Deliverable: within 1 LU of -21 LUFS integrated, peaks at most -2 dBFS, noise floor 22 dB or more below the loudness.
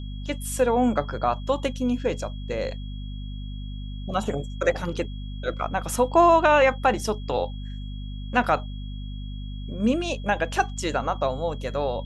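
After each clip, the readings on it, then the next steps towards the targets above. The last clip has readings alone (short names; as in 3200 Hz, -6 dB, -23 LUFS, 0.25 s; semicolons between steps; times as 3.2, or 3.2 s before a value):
hum 50 Hz; harmonics up to 250 Hz; hum level -31 dBFS; steady tone 3300 Hz; tone level -48 dBFS; loudness -24.5 LUFS; peak -7.5 dBFS; loudness target -21.0 LUFS
-> notches 50/100/150/200/250 Hz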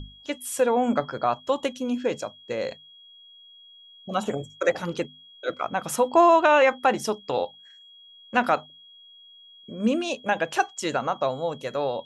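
hum none; steady tone 3300 Hz; tone level -48 dBFS
-> notch 3300 Hz, Q 30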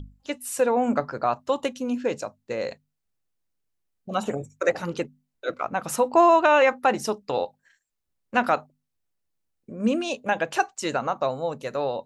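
steady tone none; loudness -25.0 LUFS; peak -8.0 dBFS; loudness target -21.0 LUFS
-> gain +4 dB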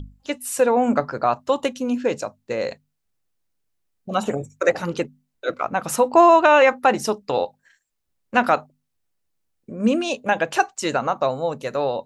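loudness -21.0 LUFS; peak -4.0 dBFS; noise floor -75 dBFS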